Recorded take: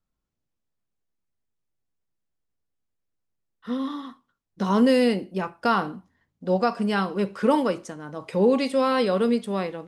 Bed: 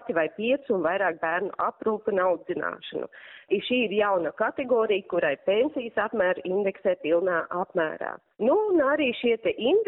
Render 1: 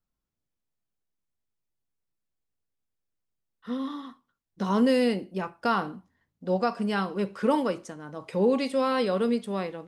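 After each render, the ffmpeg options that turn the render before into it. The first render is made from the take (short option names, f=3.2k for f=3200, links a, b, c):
-af "volume=-3.5dB"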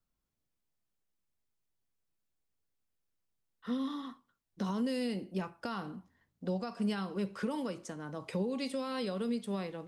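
-filter_complex "[0:a]alimiter=limit=-22dB:level=0:latency=1:release=256,acrossover=split=240|3000[a][b][c];[b]acompressor=threshold=-42dB:ratio=2[d];[a][d][c]amix=inputs=3:normalize=0"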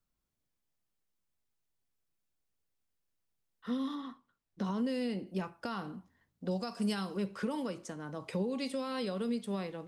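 -filter_complex "[0:a]asettb=1/sr,asplit=3[a][b][c];[a]atrim=end=3.954[d];[b]atrim=start=3.95:end=5.27,asetpts=PTS-STARTPTS,afade=t=in:d=0.004:c=qsin,afade=t=out:st=1.316:d=0.004:c=qsin,highshelf=f=5.7k:g=-8[e];[c]atrim=start=5.266[f];[d][e]acrossfade=d=0.004:c1=hsin:c2=qsin[g];[g][f]acrossfade=d=0.004:c1=qsin:c2=hsin,asettb=1/sr,asplit=3[h][i][j];[h]atrim=end=6.514[k];[i]atrim=start=6.51:end=7.17,asetpts=PTS-STARTPTS,afade=t=in:d=0.004:c=qsin,afade=t=out:st=0.656:d=0.004:c=qsin,bass=f=250:g=0,treble=f=4k:g=9[l];[j]atrim=start=7.166[m];[k][l]acrossfade=d=0.004:c1=hsin:c2=qsin[n];[n][m]acrossfade=d=0.004:c1=qsin:c2=hsin"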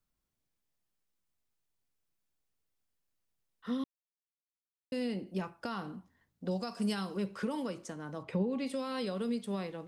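-filter_complex "[0:a]asplit=3[a][b][c];[a]afade=t=out:st=8.22:d=0.02[d];[b]bass=f=250:g=4,treble=f=4k:g=-13,afade=t=in:st=8.22:d=0.02,afade=t=out:st=8.66:d=0.02[e];[c]afade=t=in:st=8.66:d=0.02[f];[d][e][f]amix=inputs=3:normalize=0,asplit=3[g][h][i];[g]atrim=end=3.84,asetpts=PTS-STARTPTS,afade=t=out:st=3.836:d=0.004:c=hsin[j];[h]atrim=start=3.84:end=4.92,asetpts=PTS-STARTPTS,volume=0[k];[i]atrim=start=4.92,asetpts=PTS-STARTPTS,afade=t=in:d=0.004:c=hsin[l];[j][k][l]concat=n=3:v=0:a=1"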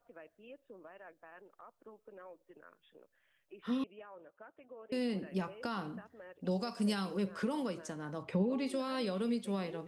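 -filter_complex "[1:a]volume=-29dB[a];[0:a][a]amix=inputs=2:normalize=0"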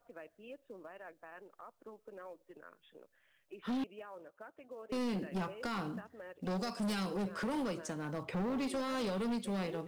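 -filter_complex "[0:a]asplit=2[a][b];[b]acrusher=bits=4:mode=log:mix=0:aa=0.000001,volume=-8.5dB[c];[a][c]amix=inputs=2:normalize=0,asoftclip=type=hard:threshold=-32.5dB"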